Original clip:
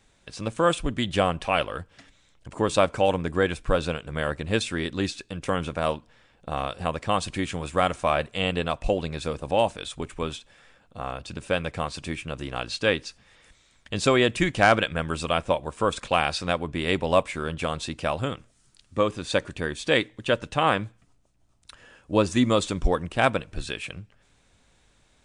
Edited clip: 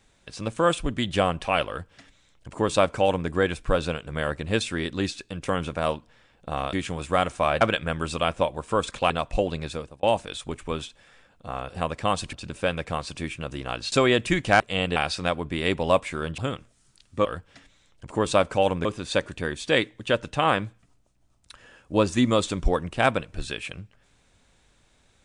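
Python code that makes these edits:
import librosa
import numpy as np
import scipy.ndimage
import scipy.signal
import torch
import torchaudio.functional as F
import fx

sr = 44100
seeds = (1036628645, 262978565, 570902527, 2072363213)

y = fx.edit(x, sr, fx.duplicate(start_s=1.68, length_s=1.6, to_s=19.04),
    fx.move(start_s=6.73, length_s=0.64, to_s=11.2),
    fx.swap(start_s=8.25, length_s=0.36, other_s=14.7, other_length_s=1.49),
    fx.fade_out_span(start_s=9.16, length_s=0.38),
    fx.cut(start_s=12.79, length_s=1.23),
    fx.cut(start_s=17.61, length_s=0.56), tone=tone)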